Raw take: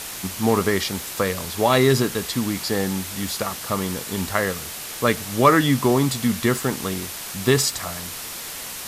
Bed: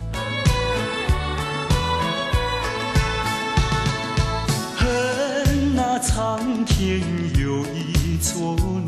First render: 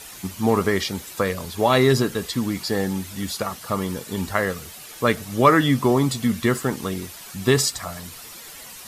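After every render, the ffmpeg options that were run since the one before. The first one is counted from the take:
-af "afftdn=nr=10:nf=-34"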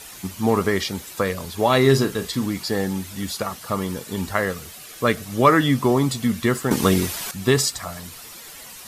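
-filter_complex "[0:a]asettb=1/sr,asplit=3[s0][s1][s2];[s0]atrim=end=1.814[s3];[s1]atrim=start=1.81:end=2.46,asetpts=PTS-STARTPTS,afade=t=in:d=0.004:c=qsin,afade=t=out:st=0.646:d=0.004:c=qsin,asplit=2[s4][s5];[s5]adelay=37,volume=0.316[s6];[s4][s6]amix=inputs=2:normalize=0,atrim=end_sample=28665[s7];[s2]atrim=start=2.456[s8];[s3][s7]acrossfade=d=0.004:c1=hsin:c2=qsin[s9];[s9][s8]acrossfade=d=0.004:c1=qsin:c2=hsin,asettb=1/sr,asplit=3[s10][s11][s12];[s10]atrim=end=4.714[s13];[s11]atrim=start=4.71:end=5.26,asetpts=PTS-STARTPTS,afade=t=in:d=0.004:c=qsin,afade=t=out:st=0.546:d=0.004:c=qsin,asuperstop=centerf=890:order=4:qfactor=8[s14];[s12]atrim=start=5.256[s15];[s13][s14]acrossfade=d=0.004:c1=hsin:c2=qsin[s16];[s16][s15]acrossfade=d=0.004:c1=qsin:c2=hsin,asplit=3[s17][s18][s19];[s17]atrim=end=6.712[s20];[s18]atrim=start=6.708:end=7.312,asetpts=PTS-STARTPTS,volume=3.16[s21];[s19]atrim=start=7.308[s22];[s20][s21]acrossfade=d=0.004:c1=hsin:c2=hsin[s23];[s23][s22]acrossfade=d=0.004:c1=hsin:c2=hsin"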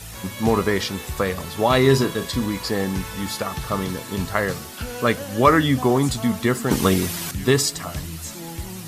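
-filter_complex "[1:a]volume=0.251[s0];[0:a][s0]amix=inputs=2:normalize=0"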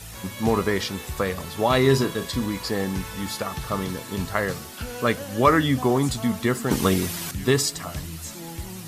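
-af "volume=0.75"

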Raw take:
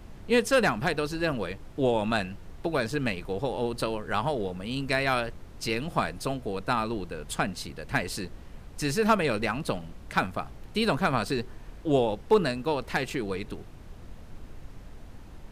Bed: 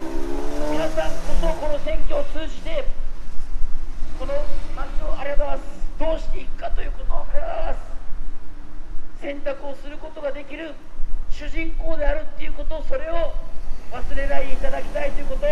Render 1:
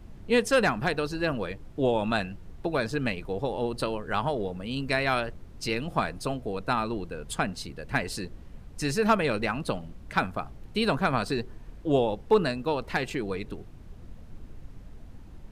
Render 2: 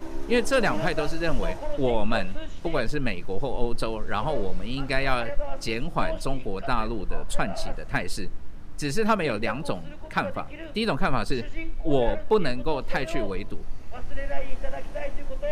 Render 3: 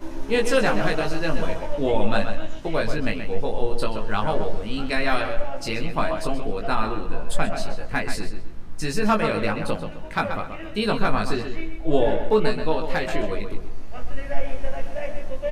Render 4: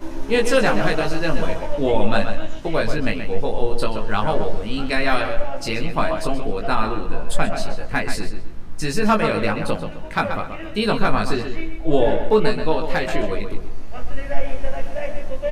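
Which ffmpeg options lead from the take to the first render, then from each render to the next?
-af "afftdn=nr=6:nf=-46"
-filter_complex "[1:a]volume=0.398[s0];[0:a][s0]amix=inputs=2:normalize=0"
-filter_complex "[0:a]asplit=2[s0][s1];[s1]adelay=19,volume=0.708[s2];[s0][s2]amix=inputs=2:normalize=0,asplit=2[s3][s4];[s4]adelay=130,lowpass=f=4000:p=1,volume=0.422,asplit=2[s5][s6];[s6]adelay=130,lowpass=f=4000:p=1,volume=0.34,asplit=2[s7][s8];[s8]adelay=130,lowpass=f=4000:p=1,volume=0.34,asplit=2[s9][s10];[s10]adelay=130,lowpass=f=4000:p=1,volume=0.34[s11];[s3][s5][s7][s9][s11]amix=inputs=5:normalize=0"
-af "volume=1.41,alimiter=limit=0.708:level=0:latency=1"

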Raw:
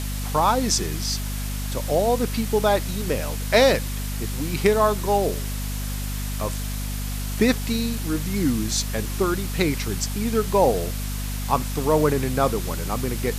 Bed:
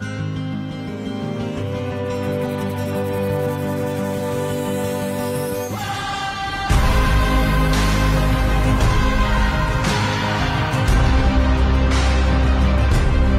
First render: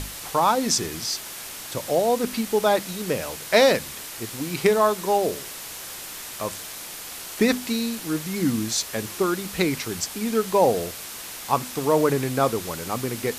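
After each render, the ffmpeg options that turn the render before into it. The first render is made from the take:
-af "bandreject=f=50:t=h:w=6,bandreject=f=100:t=h:w=6,bandreject=f=150:t=h:w=6,bandreject=f=200:t=h:w=6,bandreject=f=250:t=h:w=6"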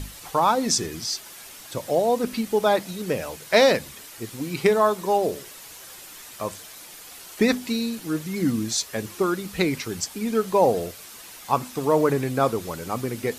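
-af "afftdn=nr=8:nf=-37"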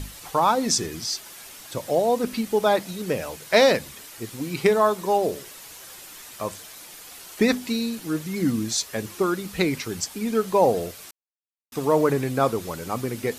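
-filter_complex "[0:a]asplit=3[s0][s1][s2];[s0]atrim=end=11.11,asetpts=PTS-STARTPTS,afade=t=out:st=11.106:d=0.004:c=hsin[s3];[s1]atrim=start=11.11:end=11.72,asetpts=PTS-STARTPTS,volume=0[s4];[s2]atrim=start=11.72,asetpts=PTS-STARTPTS,afade=t=in:d=0.004:c=hsin[s5];[s3][s4][s5]concat=n=3:v=0:a=1"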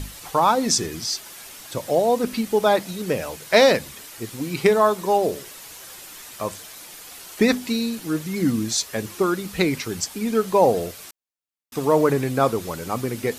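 -af "volume=1.26"

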